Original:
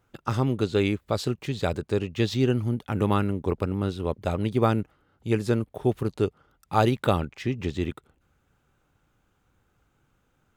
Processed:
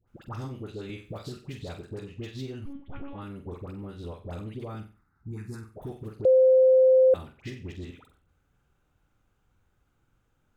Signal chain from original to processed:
0:04.75–0:05.64: phaser with its sweep stopped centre 1,300 Hz, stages 4
downward compressor 5 to 1, threshold −31 dBFS, peak gain reduction 14 dB
low-shelf EQ 69 Hz +8 dB
flutter between parallel walls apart 7.9 metres, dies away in 0.34 s
0:02.65–0:03.14: one-pitch LPC vocoder at 8 kHz 280 Hz
all-pass dispersion highs, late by 76 ms, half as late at 960 Hz
0:00.89–0:01.37: multiband upward and downward compressor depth 70%
0:06.25–0:07.14: beep over 519 Hz −9 dBFS
level −5.5 dB

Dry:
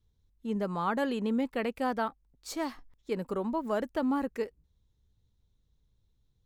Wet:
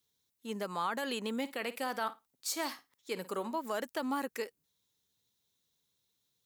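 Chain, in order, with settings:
high-pass filter 150 Hz 12 dB per octave
spectral tilt +3.5 dB per octave
brickwall limiter −24.5 dBFS, peak gain reduction 6.5 dB
0:01.39–0:03.58: flutter between parallel walls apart 9.3 metres, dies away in 0.21 s

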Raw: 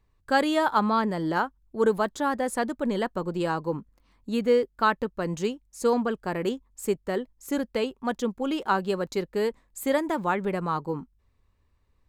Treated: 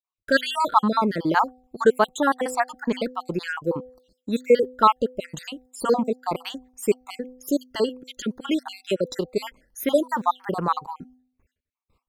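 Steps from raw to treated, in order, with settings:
time-frequency cells dropped at random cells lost 58%
noise gate with hold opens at −58 dBFS
low-shelf EQ 150 Hz −8.5 dB
hum removal 253.2 Hz, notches 3
level +7.5 dB

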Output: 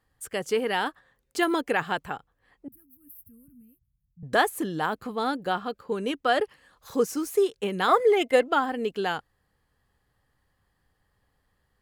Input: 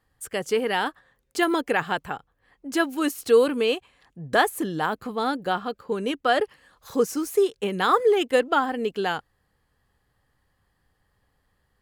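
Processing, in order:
0:02.68–0:04.23: inverse Chebyshev band-stop filter 370–7,100 Hz, stop band 50 dB
0:07.88–0:08.46: hollow resonant body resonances 660/2,100 Hz, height 15 dB
level −2 dB

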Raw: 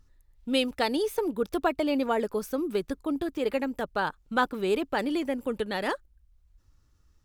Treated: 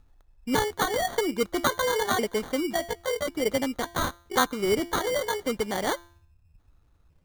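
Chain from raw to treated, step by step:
pitch shifter gated in a rhythm +9 semitones, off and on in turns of 546 ms
hum removal 342.1 Hz, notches 11
decimation without filtering 17×
level +2 dB

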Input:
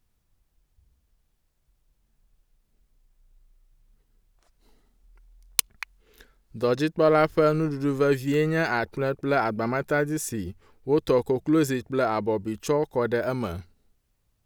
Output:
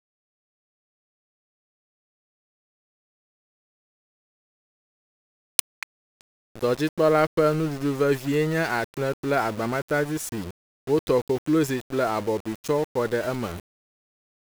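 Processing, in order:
centre clipping without the shift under −32.5 dBFS

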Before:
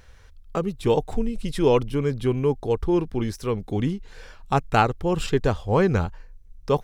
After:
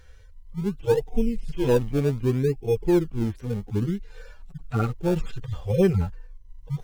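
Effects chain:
harmonic-percussive split with one part muted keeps harmonic
parametric band 790 Hz −3 dB
in parallel at −11.5 dB: sample-and-hold swept by an LFO 30×, swing 100% 0.65 Hz

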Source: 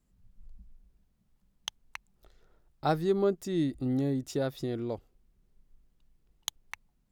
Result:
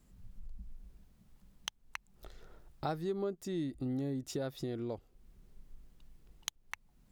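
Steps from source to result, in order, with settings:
downward compressor 2.5 to 1, threshold −51 dBFS, peak gain reduction 19 dB
level +8.5 dB

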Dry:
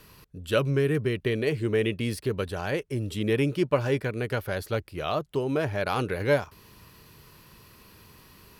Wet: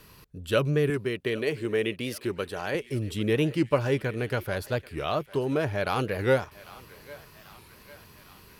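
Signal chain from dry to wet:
0:00.91–0:02.75: high-pass filter 270 Hz 6 dB per octave
feedback echo with a high-pass in the loop 798 ms, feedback 68%, high-pass 680 Hz, level −18 dB
wow of a warped record 45 rpm, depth 160 cents

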